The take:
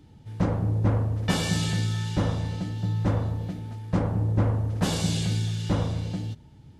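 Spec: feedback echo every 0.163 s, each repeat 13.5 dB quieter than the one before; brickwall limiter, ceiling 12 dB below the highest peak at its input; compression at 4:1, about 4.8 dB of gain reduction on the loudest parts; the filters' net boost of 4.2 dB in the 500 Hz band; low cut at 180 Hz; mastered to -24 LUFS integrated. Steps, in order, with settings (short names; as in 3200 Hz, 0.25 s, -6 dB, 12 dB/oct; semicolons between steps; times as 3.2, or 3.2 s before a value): HPF 180 Hz; bell 500 Hz +5 dB; compressor 4:1, threshold -27 dBFS; limiter -29 dBFS; feedback echo 0.163 s, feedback 21%, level -13.5 dB; gain +13.5 dB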